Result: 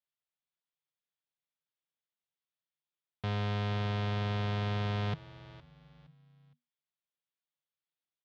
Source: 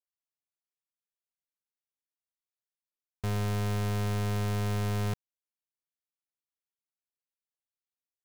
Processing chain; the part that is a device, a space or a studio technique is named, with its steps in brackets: frequency-shifting delay pedal into a guitar cabinet (frequency-shifting echo 0.464 s, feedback 31%, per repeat -81 Hz, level -16.5 dB; speaker cabinet 110–4300 Hz, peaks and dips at 150 Hz +9 dB, 230 Hz -7 dB, 370 Hz -6 dB, 3400 Hz +5 dB)

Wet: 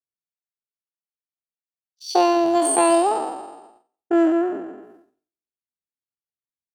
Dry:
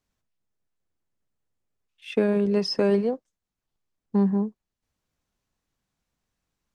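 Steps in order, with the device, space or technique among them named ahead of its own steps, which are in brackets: spectral trails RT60 1.18 s; HPF 47 Hz 12 dB/oct; expander -49 dBFS; chipmunk voice (pitch shift +9 st); gain +3.5 dB

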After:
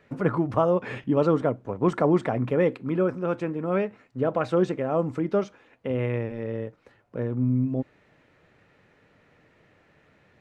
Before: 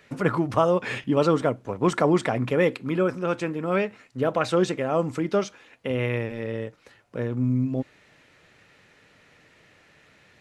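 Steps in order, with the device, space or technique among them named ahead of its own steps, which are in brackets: through cloth (high shelf 2300 Hz -15 dB)

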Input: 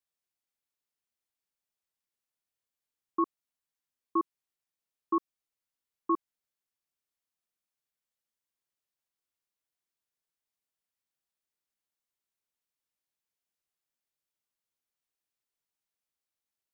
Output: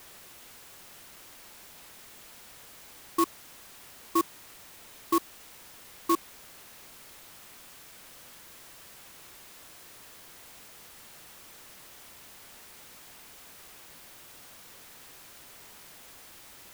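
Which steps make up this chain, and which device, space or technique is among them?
early CD player with a faulty converter (zero-crossing step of -43 dBFS; clock jitter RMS 0.054 ms); gain +2.5 dB

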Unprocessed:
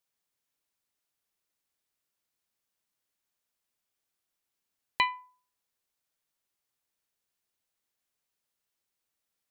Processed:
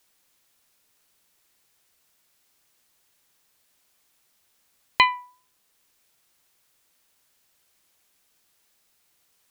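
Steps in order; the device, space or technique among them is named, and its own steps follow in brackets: noise-reduction cassette on a plain deck (mismatched tape noise reduction encoder only; wow and flutter 22 cents; white noise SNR 34 dB); gain +9 dB

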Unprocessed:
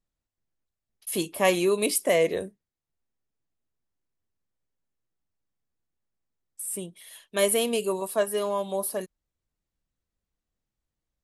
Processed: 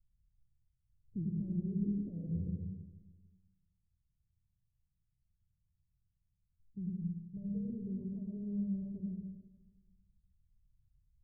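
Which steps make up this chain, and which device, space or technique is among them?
club heard from the street (limiter -19 dBFS, peak gain reduction 10.5 dB; LPF 130 Hz 24 dB/oct; reverb RT60 1.2 s, pre-delay 81 ms, DRR -1 dB); 7.01–7.7 comb 6.5 ms, depth 77%; gain +11.5 dB

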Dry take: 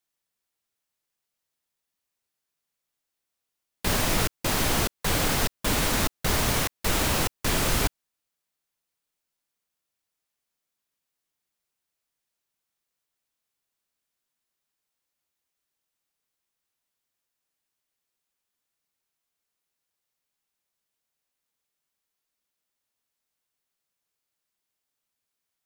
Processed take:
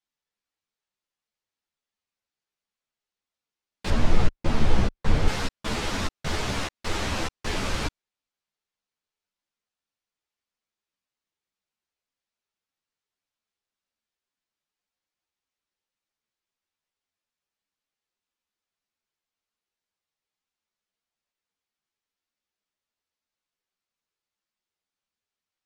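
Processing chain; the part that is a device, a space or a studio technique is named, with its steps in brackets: string-machine ensemble chorus (ensemble effect; LPF 5800 Hz 12 dB/oct); 3.9–5.28 tilt -2.5 dB/oct

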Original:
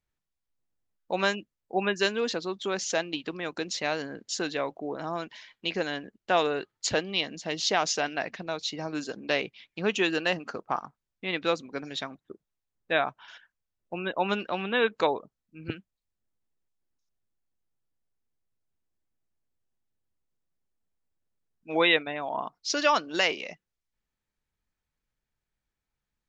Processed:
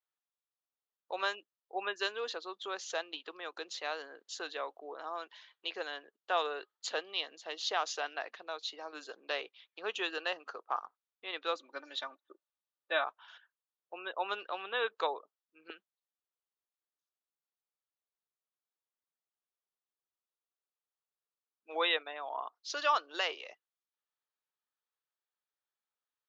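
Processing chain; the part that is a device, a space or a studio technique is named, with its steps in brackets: phone speaker on a table (speaker cabinet 440–6500 Hz, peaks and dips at 600 Hz -3 dB, 1200 Hz +5 dB, 2200 Hz -6 dB, 3500 Hz +3 dB, 5400 Hz -6 dB); 11.55–13.04 comb 3.4 ms, depth 75%; gain -7 dB

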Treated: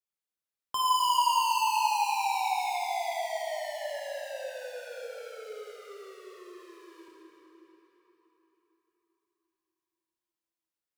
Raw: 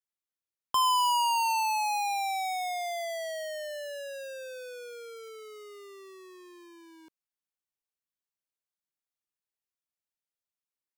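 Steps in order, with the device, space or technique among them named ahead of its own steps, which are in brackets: cathedral (reverb RT60 4.4 s, pre-delay 13 ms, DRR -3.5 dB); gain -4.5 dB

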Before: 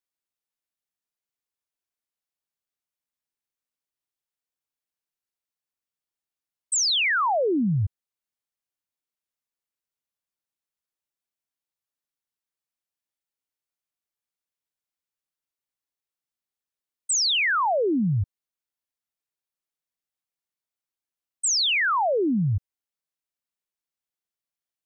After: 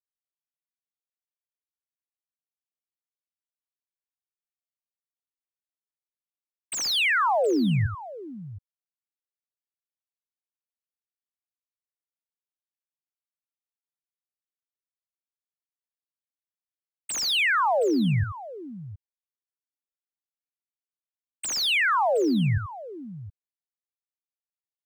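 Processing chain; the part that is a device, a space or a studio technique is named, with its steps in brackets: early transistor amplifier (crossover distortion -57 dBFS; slew limiter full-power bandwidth 230 Hz); tapped delay 82/719 ms -10.5/-16 dB

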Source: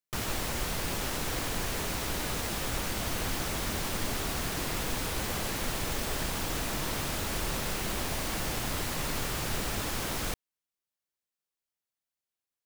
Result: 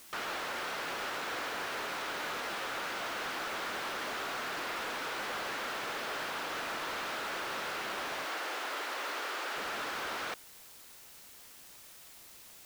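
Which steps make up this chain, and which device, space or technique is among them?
drive-through speaker (BPF 450–3700 Hz; bell 1400 Hz +5.5 dB 0.54 oct; hard clip -33 dBFS, distortion -14 dB; white noise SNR 15 dB); 8.25–9.56 HPF 280 Hz 24 dB/oct

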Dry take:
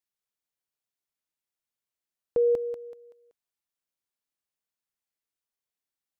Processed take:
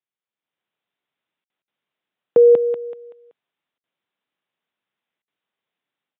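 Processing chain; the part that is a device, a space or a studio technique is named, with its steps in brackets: call with lost packets (HPF 130 Hz 24 dB/oct; downsampling 8000 Hz; AGC gain up to 12 dB; packet loss packets of 60 ms)

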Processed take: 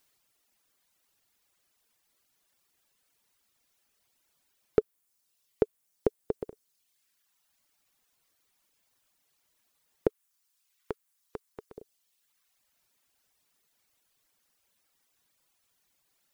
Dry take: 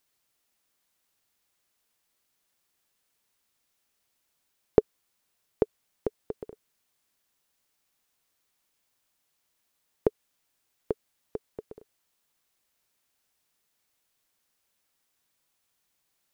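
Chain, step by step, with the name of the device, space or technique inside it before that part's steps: soft clipper into limiter (soft clip -5.5 dBFS, distortion -18 dB; limiter -14.5 dBFS, peak gain reduction 7.5 dB); 10.07–11.77 resonant low shelf 780 Hz -8.5 dB, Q 1.5; reverb removal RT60 1.3 s; gain +5 dB

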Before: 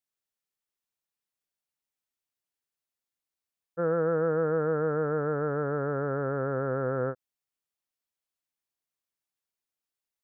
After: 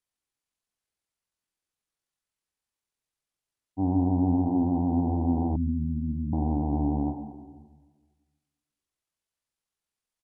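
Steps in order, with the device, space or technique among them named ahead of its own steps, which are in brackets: monster voice (pitch shift -10 st; low shelf 110 Hz +7.5 dB; reverb RT60 1.5 s, pre-delay 29 ms, DRR 6 dB); 5.56–6.33 Chebyshev band-stop 270–1900 Hz, order 5

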